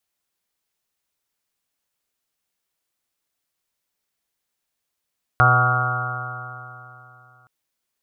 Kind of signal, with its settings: stretched partials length 2.07 s, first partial 123 Hz, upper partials -19.5/-18.5/-15/-12/-3/-14/-17/-3/-2.5/1.5/-18 dB, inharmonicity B 0.00073, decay 2.96 s, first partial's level -16 dB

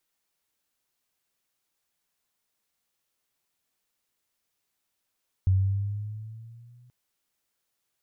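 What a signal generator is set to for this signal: gliding synth tone sine, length 1.43 s, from 93.4 Hz, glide +5 st, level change -35.5 dB, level -17 dB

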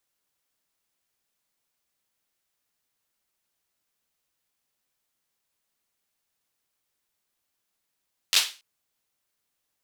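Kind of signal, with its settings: hand clap length 0.28 s, apart 11 ms, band 3.5 kHz, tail 0.32 s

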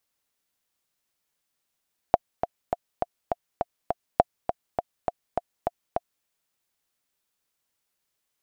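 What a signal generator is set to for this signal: metronome 204 bpm, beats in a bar 7, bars 2, 700 Hz, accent 8.5 dB -2.5 dBFS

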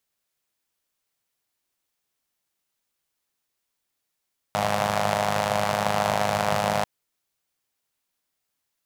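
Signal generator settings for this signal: four-cylinder engine model, steady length 2.29 s, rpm 3100, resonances 160/660 Hz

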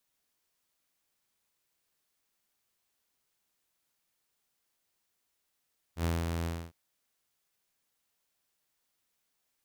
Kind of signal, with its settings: ADSR saw 83.7 Hz, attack 84 ms, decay 188 ms, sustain -4 dB, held 0.49 s, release 269 ms -24.5 dBFS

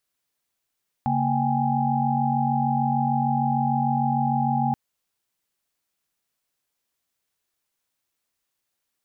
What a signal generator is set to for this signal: chord C#3/A#3/G5/G#5 sine, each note -25.5 dBFS 3.68 s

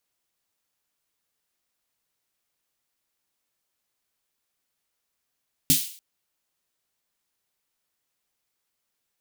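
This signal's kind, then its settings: snare drum length 0.29 s, tones 160 Hz, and 270 Hz, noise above 2.8 kHz, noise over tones 4 dB, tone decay 0.16 s, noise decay 0.49 s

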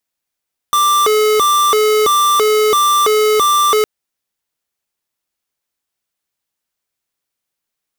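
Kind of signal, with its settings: siren hi-lo 428–1180 Hz 1.5 per s square -12 dBFS 3.11 s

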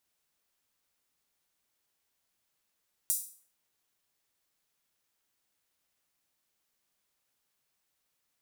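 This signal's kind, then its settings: open hi-hat length 0.45 s, high-pass 8.3 kHz, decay 0.45 s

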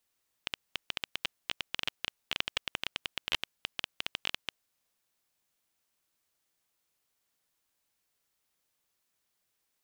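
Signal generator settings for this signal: random clicks 13 per s -13 dBFS 4.25 s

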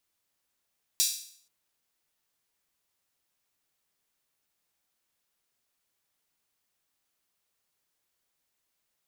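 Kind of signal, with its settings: open hi-hat length 0.48 s, high-pass 4.6 kHz, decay 0.57 s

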